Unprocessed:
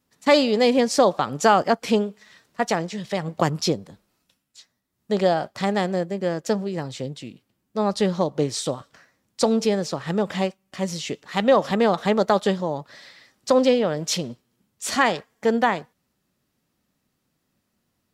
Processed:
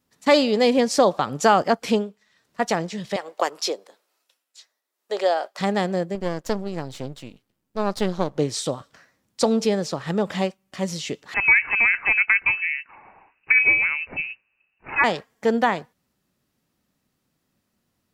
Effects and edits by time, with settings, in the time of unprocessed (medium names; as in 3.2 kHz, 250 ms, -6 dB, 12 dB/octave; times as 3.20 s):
1.92–2.61 s: dip -12.5 dB, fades 0.26 s
3.16–5.59 s: high-pass 420 Hz 24 dB/octave
6.15–8.38 s: partial rectifier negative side -12 dB
11.34–15.04 s: frequency inversion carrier 2.8 kHz